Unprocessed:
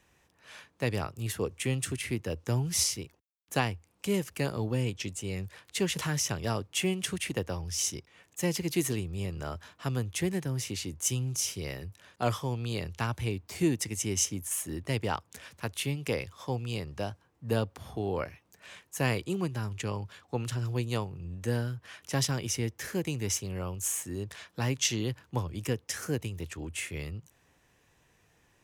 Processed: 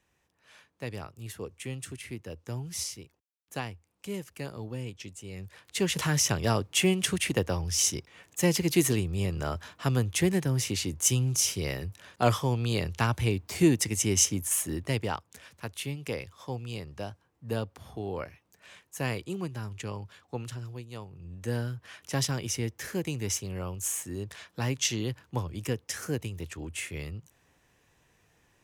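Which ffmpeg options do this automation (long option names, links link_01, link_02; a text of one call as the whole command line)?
ffmpeg -i in.wav -af "volume=18dB,afade=type=in:start_time=5.31:duration=0.92:silence=0.251189,afade=type=out:start_time=14.56:duration=0.69:silence=0.398107,afade=type=out:start_time=20.34:duration=0.54:silence=0.316228,afade=type=in:start_time=20.88:duration=0.77:silence=0.223872" out.wav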